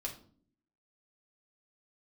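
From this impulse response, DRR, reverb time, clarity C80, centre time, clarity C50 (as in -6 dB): -1.5 dB, 0.50 s, 15.0 dB, 15 ms, 10.5 dB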